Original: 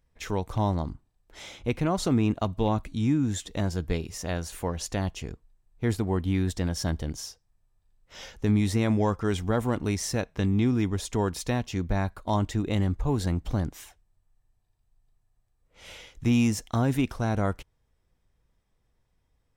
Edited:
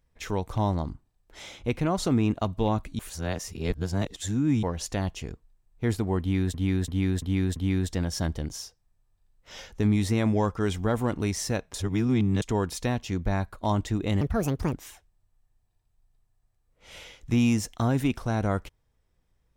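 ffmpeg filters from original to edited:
-filter_complex "[0:a]asplit=11[a][b][c][d][e][f][g][h][i][j][k];[a]atrim=end=2.992[l];[b]atrim=start=2.988:end=4.632,asetpts=PTS-STARTPTS,areverse[m];[c]atrim=start=4.628:end=6.542[n];[d]atrim=start=6.198:end=6.542[o];[e]atrim=start=6.198:end=6.542[p];[f]atrim=start=6.198:end=6.542[q];[g]atrim=start=6.198:end=10.382[r];[h]atrim=start=10.378:end=11.062,asetpts=PTS-STARTPTS,areverse[s];[i]atrim=start=11.058:end=12.854[t];[j]atrim=start=12.85:end=13.67,asetpts=PTS-STARTPTS,asetrate=69237,aresample=44100,atrim=end_sample=23033,asetpts=PTS-STARTPTS[u];[k]atrim=start=13.666[v];[l][m]acrossfade=d=0.004:c1=hsin:c2=hsin[w];[w][n]acrossfade=d=0.004:c1=hsin:c2=hsin[x];[x][o]acrossfade=d=0.004:c1=hsin:c2=hsin[y];[y][p]acrossfade=d=0.004:c1=hsin:c2=hsin[z];[z][q]acrossfade=d=0.004:c1=hsin:c2=hsin[aa];[aa][r]acrossfade=d=0.004:c1=hsin:c2=hsin[ab];[ab][s]acrossfade=d=0.004:c1=hsin:c2=hsin[ac];[ac][t]acrossfade=d=0.004:c1=hsin:c2=hsin[ad];[ad][u]acrossfade=d=0.004:c1=hsin:c2=hsin[ae];[ae][v]acrossfade=d=0.004:c1=hsin:c2=hsin"

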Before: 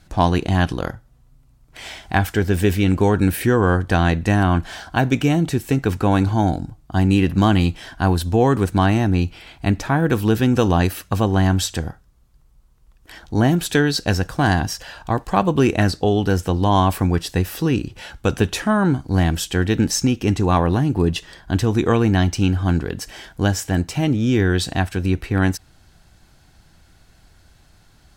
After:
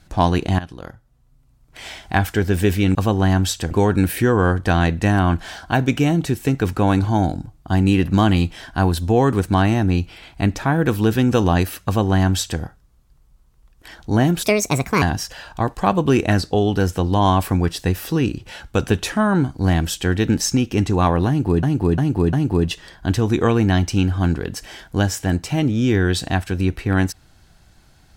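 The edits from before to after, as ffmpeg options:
-filter_complex "[0:a]asplit=9[a][b][c][d][e][f][g][h][i];[a]atrim=end=0.59,asetpts=PTS-STARTPTS,afade=t=out:st=0.586:d=0.004:c=hsin:silence=0.149624[j];[b]atrim=start=0.59:end=2.952,asetpts=PTS-STARTPTS,afade=t=in:d=1.3:silence=0.149624[k];[c]atrim=start=11.088:end=11.852[l];[d]atrim=start=2.948:end=13.674[m];[e]atrim=start=13.67:end=14.52,asetpts=PTS-STARTPTS,asetrate=63504,aresample=44100,atrim=end_sample=26031,asetpts=PTS-STARTPTS[n];[f]atrim=start=14.516:end=21.132[o];[g]atrim=start=20.778:end=21.132[p];[h]atrim=start=20.778:end=21.132[q];[i]atrim=start=20.778[r];[j][k]concat=n=2:v=0:a=1[s];[s][l]acrossfade=d=0.004:c1=hsin:c2=hsin[t];[t][m]acrossfade=d=0.004:c1=hsin:c2=hsin[u];[u][n]acrossfade=d=0.004:c1=hsin:c2=hsin[v];[v][o]acrossfade=d=0.004:c1=hsin:c2=hsin[w];[w][p]acrossfade=d=0.004:c1=hsin:c2=hsin[x];[x][q]acrossfade=d=0.004:c1=hsin:c2=hsin[y];[y][r]acrossfade=d=0.004:c1=hsin:c2=hsin"

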